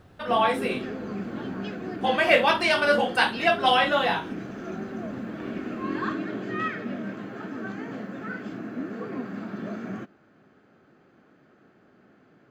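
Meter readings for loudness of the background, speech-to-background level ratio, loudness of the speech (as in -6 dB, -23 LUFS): -34.0 LUFS, 11.5 dB, -22.5 LUFS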